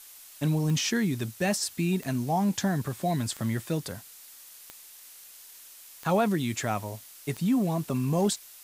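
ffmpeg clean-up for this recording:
ffmpeg -i in.wav -af "adeclick=threshold=4,afftdn=noise_reduction=24:noise_floor=-49" out.wav

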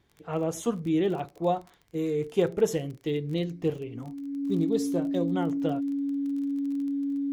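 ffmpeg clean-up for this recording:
ffmpeg -i in.wav -af "adeclick=threshold=4,bandreject=frequency=280:width=30" out.wav

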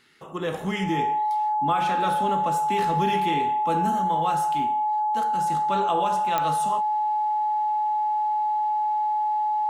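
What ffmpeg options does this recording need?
ffmpeg -i in.wav -af "adeclick=threshold=4,bandreject=frequency=850:width=30" out.wav

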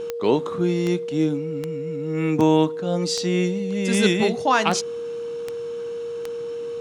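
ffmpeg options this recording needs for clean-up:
ffmpeg -i in.wav -af "adeclick=threshold=4,bandreject=frequency=470:width=30" out.wav

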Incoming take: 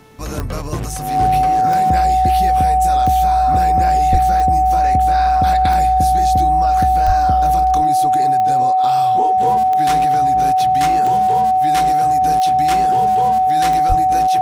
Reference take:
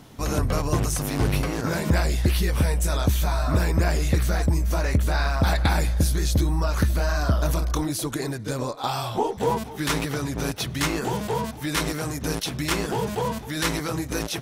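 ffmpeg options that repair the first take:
ffmpeg -i in.wav -filter_complex "[0:a]adeclick=threshold=4,bandreject=frequency=438.9:width_type=h:width=4,bandreject=frequency=877.8:width_type=h:width=4,bandreject=frequency=1316.7:width_type=h:width=4,bandreject=frequency=1755.6:width_type=h:width=4,bandreject=frequency=2194.5:width_type=h:width=4,bandreject=frequency=2633.4:width_type=h:width=4,bandreject=frequency=750:width=30,asplit=3[link_01][link_02][link_03];[link_01]afade=type=out:start_time=4.11:duration=0.02[link_04];[link_02]highpass=frequency=140:width=0.5412,highpass=frequency=140:width=1.3066,afade=type=in:start_time=4.11:duration=0.02,afade=type=out:start_time=4.23:duration=0.02[link_05];[link_03]afade=type=in:start_time=4.23:duration=0.02[link_06];[link_04][link_05][link_06]amix=inputs=3:normalize=0,asplit=3[link_07][link_08][link_09];[link_07]afade=type=out:start_time=7.06:duration=0.02[link_10];[link_08]highpass=frequency=140:width=0.5412,highpass=frequency=140:width=1.3066,afade=type=in:start_time=7.06:duration=0.02,afade=type=out:start_time=7.18:duration=0.02[link_11];[link_09]afade=type=in:start_time=7.18:duration=0.02[link_12];[link_10][link_11][link_12]amix=inputs=3:normalize=0,asplit=3[link_13][link_14][link_15];[link_13]afade=type=out:start_time=13.88:duration=0.02[link_16];[link_14]highpass=frequency=140:width=0.5412,highpass=frequency=140:width=1.3066,afade=type=in:start_time=13.88:duration=0.02,afade=type=out:start_time=14:duration=0.02[link_17];[link_15]afade=type=in:start_time=14:duration=0.02[link_18];[link_16][link_17][link_18]amix=inputs=3:normalize=0" out.wav

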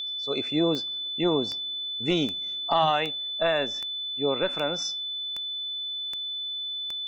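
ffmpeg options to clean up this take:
ffmpeg -i in.wav -af "adeclick=threshold=4,bandreject=frequency=3500:width=30" out.wav

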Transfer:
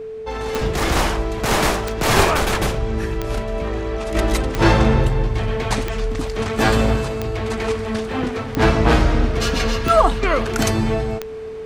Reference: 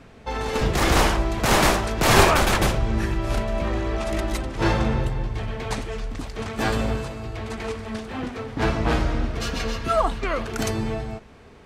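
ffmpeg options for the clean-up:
ffmpeg -i in.wav -af "adeclick=threshold=4,bandreject=frequency=440:width=30,asetnsamples=nb_out_samples=441:pad=0,asendcmd='4.15 volume volume -7dB',volume=0dB" out.wav

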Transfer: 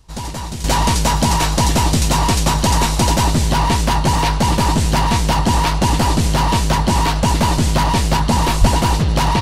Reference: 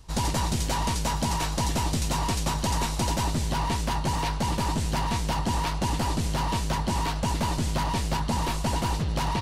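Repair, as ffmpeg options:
ffmpeg -i in.wav -filter_complex "[0:a]asplit=3[link_01][link_02][link_03];[link_01]afade=type=out:start_time=8.6:duration=0.02[link_04];[link_02]highpass=frequency=140:width=0.5412,highpass=frequency=140:width=1.3066,afade=type=in:start_time=8.6:duration=0.02,afade=type=out:start_time=8.72:duration=0.02[link_05];[link_03]afade=type=in:start_time=8.72:duration=0.02[link_06];[link_04][link_05][link_06]amix=inputs=3:normalize=0,asetnsamples=nb_out_samples=441:pad=0,asendcmd='0.64 volume volume -11.5dB',volume=0dB" out.wav

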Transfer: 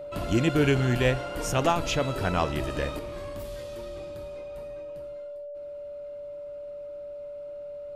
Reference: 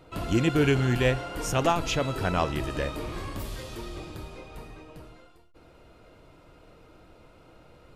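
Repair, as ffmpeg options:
ffmpeg -i in.wav -af "bandreject=frequency=580:width=30,asetnsamples=nb_out_samples=441:pad=0,asendcmd='2.99 volume volume 5.5dB',volume=0dB" out.wav

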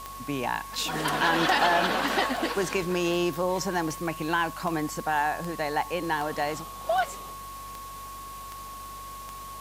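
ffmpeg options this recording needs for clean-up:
ffmpeg -i in.wav -af "adeclick=threshold=4,bandreject=frequency=48.7:width_type=h:width=4,bandreject=frequency=97.4:width_type=h:width=4,bandreject=frequency=146.1:width_type=h:width=4,bandreject=frequency=194.8:width_type=h:width=4,bandreject=frequency=243.5:width_type=h:width=4,bandreject=frequency=292.2:width_type=h:width=4,bandreject=frequency=1100:width=30,afwtdn=0.0045" out.wav

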